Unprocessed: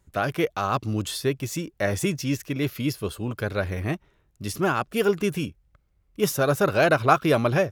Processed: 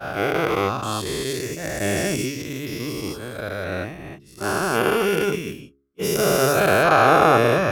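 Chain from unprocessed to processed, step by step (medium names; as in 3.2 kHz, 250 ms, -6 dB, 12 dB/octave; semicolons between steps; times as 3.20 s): every event in the spectrogram widened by 480 ms; expander -14 dBFS; de-hum 69.46 Hz, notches 6; trim -4.5 dB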